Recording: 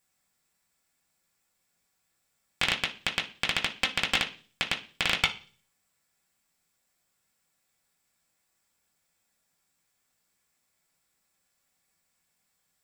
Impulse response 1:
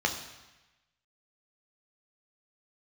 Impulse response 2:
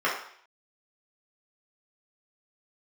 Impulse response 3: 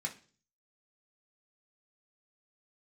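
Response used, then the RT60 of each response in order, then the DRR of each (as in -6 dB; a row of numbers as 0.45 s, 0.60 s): 3; 1.1 s, 0.60 s, 0.40 s; 2.5 dB, -7.0 dB, -1.5 dB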